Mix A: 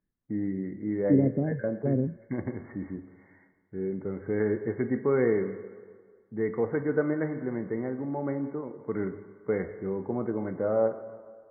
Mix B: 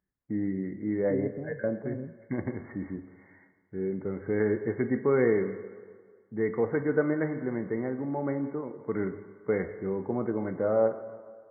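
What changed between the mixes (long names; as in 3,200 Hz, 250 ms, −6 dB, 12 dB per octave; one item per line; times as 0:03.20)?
second voice −11.5 dB
master: remove high-frequency loss of the air 260 metres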